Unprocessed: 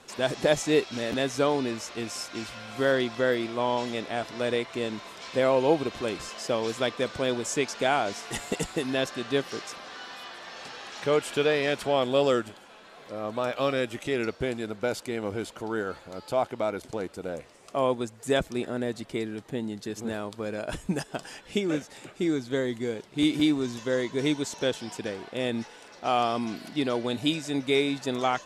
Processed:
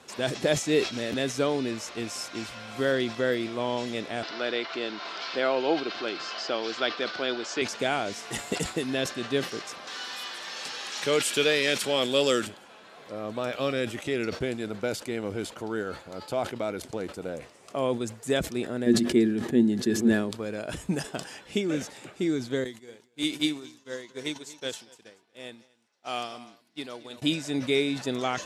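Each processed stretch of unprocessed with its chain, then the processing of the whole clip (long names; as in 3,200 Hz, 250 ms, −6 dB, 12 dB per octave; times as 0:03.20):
0:04.23–0:07.62: upward compression, threshold −30 dBFS + loudspeaker in its box 330–5,500 Hz, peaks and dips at 330 Hz +3 dB, 500 Hz −4 dB, 750 Hz +5 dB, 1,400 Hz +8 dB, 3,000 Hz +3 dB, 4,600 Hz +7 dB
0:09.87–0:12.47: high-pass filter 150 Hz + high-shelf EQ 2,500 Hz +11 dB + notch filter 690 Hz
0:18.86–0:20.31: hollow resonant body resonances 240/350/1,700 Hz, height 15 dB, ringing for 90 ms + level that may fall only so fast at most 68 dB per second
0:22.64–0:27.22: spectral tilt +2 dB per octave + single-tap delay 237 ms −10.5 dB + expander for the loud parts 2.5 to 1, over −40 dBFS
whole clip: high-pass filter 63 Hz; dynamic equaliser 910 Hz, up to −6 dB, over −39 dBFS, Q 1.3; level that may fall only so fast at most 140 dB per second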